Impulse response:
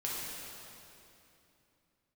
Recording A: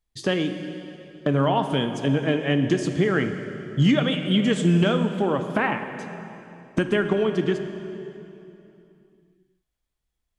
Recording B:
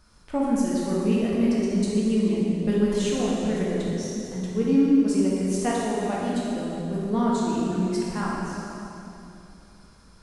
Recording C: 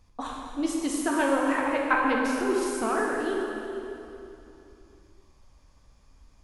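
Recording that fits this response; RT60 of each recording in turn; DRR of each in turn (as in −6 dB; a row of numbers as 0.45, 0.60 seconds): B; 2.9, 2.9, 2.9 seconds; 6.5, −6.5, −2.0 decibels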